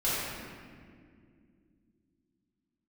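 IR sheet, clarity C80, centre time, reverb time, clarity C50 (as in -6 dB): -1.5 dB, 0.14 s, 2.2 s, -3.5 dB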